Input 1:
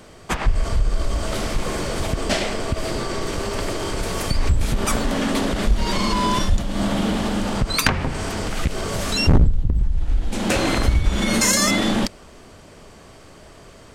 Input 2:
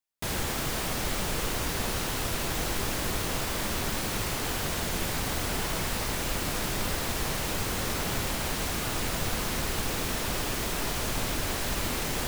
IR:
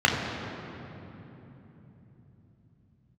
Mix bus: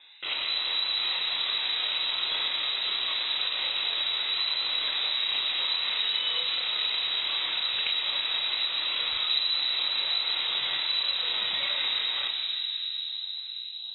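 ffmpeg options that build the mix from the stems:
-filter_complex "[0:a]asplit=2[a][b];[b]afreqshift=-1.2[c];[a][c]amix=inputs=2:normalize=1,volume=-6.5dB,asplit=2[d][e];[e]volume=-20.5dB[f];[1:a]aeval=exprs='max(val(0),0)':c=same,flanger=delay=22.5:depth=4.4:speed=0.22,volume=2.5dB,asplit=2[g][h];[h]volume=-8dB[i];[2:a]atrim=start_sample=2205[j];[f][i]amix=inputs=2:normalize=0[k];[k][j]afir=irnorm=-1:irlink=0[l];[d][g][l]amix=inputs=3:normalize=0,lowpass=f=3.4k:t=q:w=0.5098,lowpass=f=3.4k:t=q:w=0.6013,lowpass=f=3.4k:t=q:w=0.9,lowpass=f=3.4k:t=q:w=2.563,afreqshift=-4000,acompressor=threshold=-30dB:ratio=2"

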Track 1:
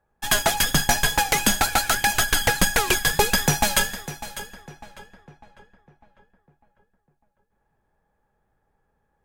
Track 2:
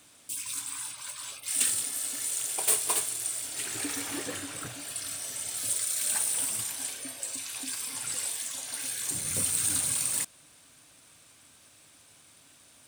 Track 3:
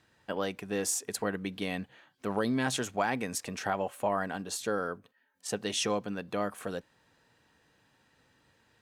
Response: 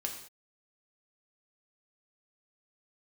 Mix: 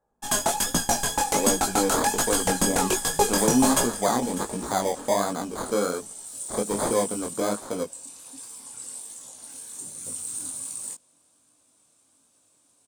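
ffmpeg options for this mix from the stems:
-filter_complex "[0:a]volume=-6dB[a];[1:a]adelay=700,volume=-11.5dB[b];[2:a]acrusher=samples=16:mix=1:aa=0.000001,adelay=1050,volume=2dB[c];[a][b][c]amix=inputs=3:normalize=0,equalizer=f=250:t=o:w=1:g=9,equalizer=f=500:t=o:w=1:g=6,equalizer=f=1k:t=o:w=1:g=7,equalizer=f=2k:t=o:w=1:g=-5,equalizer=f=8k:t=o:w=1:g=11,flanger=delay=17:depth=7.7:speed=1.3"

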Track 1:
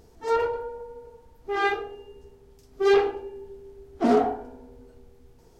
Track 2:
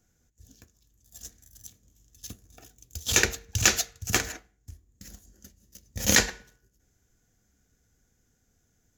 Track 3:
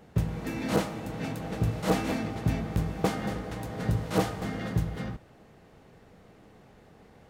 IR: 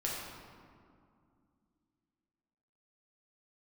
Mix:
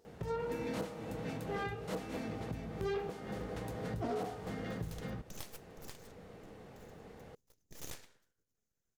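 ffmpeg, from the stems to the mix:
-filter_complex "[0:a]highpass=f=340:p=1,volume=-11.5dB[a];[1:a]aeval=exprs='abs(val(0))':c=same,adelay=1750,volume=-17.5dB[b];[2:a]adelay=50,volume=0.5dB[c];[b][c]amix=inputs=2:normalize=0,acompressor=threshold=-42dB:ratio=2.5,volume=0dB[d];[a][d]amix=inputs=2:normalize=0,equalizer=f=480:t=o:w=0.39:g=5,alimiter=level_in=4dB:limit=-24dB:level=0:latency=1:release=320,volume=-4dB"

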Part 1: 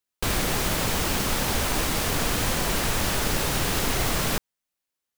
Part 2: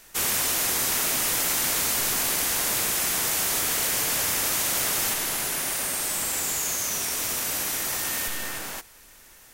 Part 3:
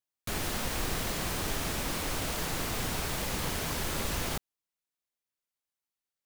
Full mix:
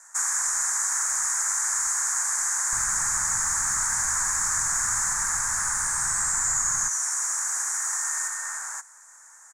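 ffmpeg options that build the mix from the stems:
-filter_complex "[0:a]adelay=2500,volume=-3dB[a];[1:a]highpass=f=480:w=0.5412,highpass=f=480:w=1.3066,highshelf=f=11k:g=-4.5,volume=-1.5dB[b];[2:a]aeval=exprs='val(0)*pow(10,-30*if(lt(mod(-1.6*n/s,1),2*abs(-1.6)/1000),1-mod(-1.6*n/s,1)/(2*abs(-1.6)/1000),(mod(-1.6*n/s,1)-2*abs(-1.6)/1000)/(1-2*abs(-1.6)/1000))/20)':c=same,volume=-19dB[c];[a][b][c]amix=inputs=3:normalize=0,firequalizer=gain_entry='entry(130,0);entry(180,-5);entry(450,-16);entry(910,5);entry(1700,5);entry(2900,-30);entry(6900,14);entry(14000,-20)':delay=0.05:min_phase=1,acrossover=split=210|1000|7300[d][e][f][g];[d]acompressor=threshold=-43dB:ratio=4[h];[e]acompressor=threshold=-52dB:ratio=4[i];[f]acompressor=threshold=-25dB:ratio=4[j];[g]acompressor=threshold=-30dB:ratio=4[k];[h][i][j][k]amix=inputs=4:normalize=0"

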